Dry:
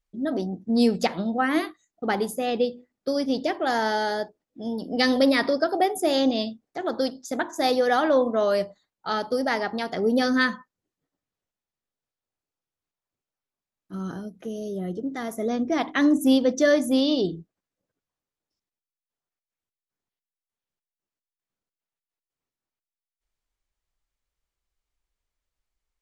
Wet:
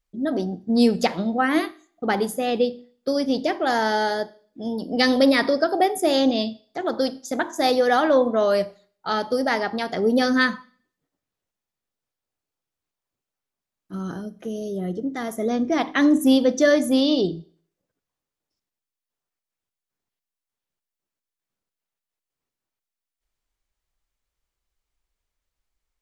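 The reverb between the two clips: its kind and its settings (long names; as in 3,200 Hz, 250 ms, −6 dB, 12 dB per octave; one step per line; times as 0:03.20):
four-comb reverb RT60 0.5 s, combs from 29 ms, DRR 18.5 dB
level +2.5 dB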